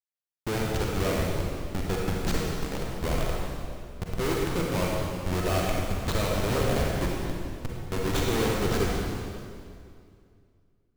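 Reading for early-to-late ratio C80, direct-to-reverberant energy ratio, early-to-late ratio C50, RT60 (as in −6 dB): 0.0 dB, −3.0 dB, −2.0 dB, 2.3 s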